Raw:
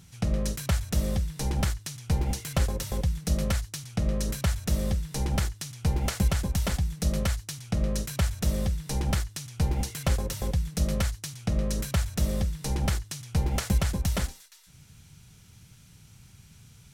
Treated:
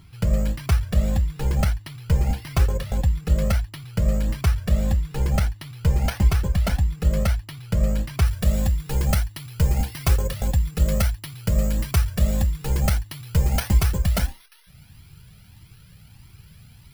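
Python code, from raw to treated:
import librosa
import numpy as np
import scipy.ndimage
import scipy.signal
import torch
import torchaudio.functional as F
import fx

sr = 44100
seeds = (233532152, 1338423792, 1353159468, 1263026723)

y = np.repeat(scipy.signal.resample_poly(x, 1, 6), 6)[:len(x)]
y = fx.high_shelf(y, sr, hz=5700.0, db=fx.steps((0.0, 2.5), (8.25, 11.0)))
y = fx.comb_cascade(y, sr, direction='rising', hz=1.6)
y = F.gain(torch.from_numpy(y), 8.5).numpy()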